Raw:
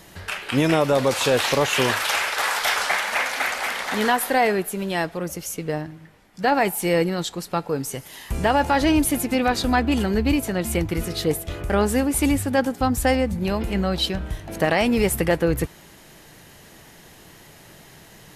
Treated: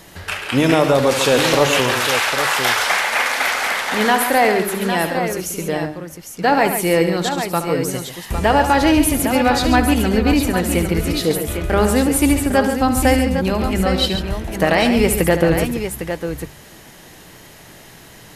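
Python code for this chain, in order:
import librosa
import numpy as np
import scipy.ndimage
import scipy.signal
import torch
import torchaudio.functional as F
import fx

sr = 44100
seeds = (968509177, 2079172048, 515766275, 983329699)

y = fx.hum_notches(x, sr, base_hz=50, count=4)
y = fx.echo_multitap(y, sr, ms=(72, 138, 805), db=(-10.5, -9.0, -8.0))
y = fx.transformer_sat(y, sr, knee_hz=980.0, at=(1.8, 3.19))
y = y * 10.0 ** (4.0 / 20.0)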